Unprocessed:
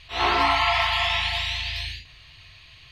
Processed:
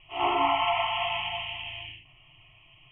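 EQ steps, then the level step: Chebyshev low-pass 3.2 kHz, order 10; peaking EQ 71 Hz -14.5 dB 0.65 oct; static phaser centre 320 Hz, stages 8; 0.0 dB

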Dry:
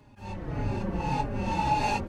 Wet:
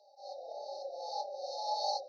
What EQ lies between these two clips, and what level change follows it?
Chebyshev band-pass 540–5700 Hz, order 5; brick-wall FIR band-stop 840–3700 Hz; dynamic bell 700 Hz, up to -5 dB, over -46 dBFS, Q 0.75; +4.5 dB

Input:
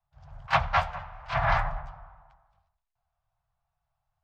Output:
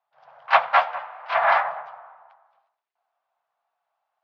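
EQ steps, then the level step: high-pass 350 Hz 24 dB/octave; low-pass 5.1 kHz 12 dB/octave; distance through air 160 m; +8.0 dB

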